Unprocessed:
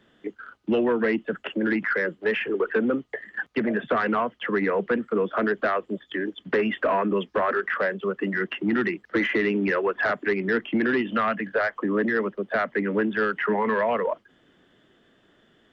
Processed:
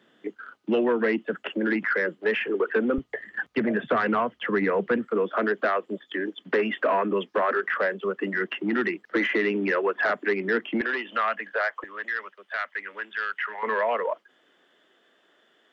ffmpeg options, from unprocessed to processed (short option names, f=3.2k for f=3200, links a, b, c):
-af "asetnsamples=n=441:p=0,asendcmd='2.98 highpass f 62;5.05 highpass f 240;10.81 highpass f 630;11.84 highpass f 1400;13.63 highpass f 460',highpass=200"